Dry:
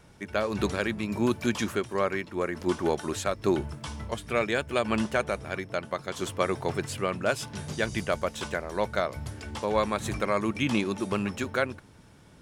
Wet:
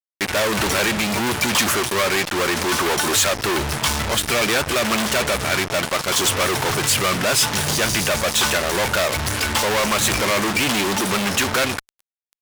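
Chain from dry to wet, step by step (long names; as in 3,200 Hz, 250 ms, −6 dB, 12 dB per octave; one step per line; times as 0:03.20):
fuzz pedal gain 49 dB, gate −44 dBFS
tilt shelving filter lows −5.5 dB, about 630 Hz
level −5 dB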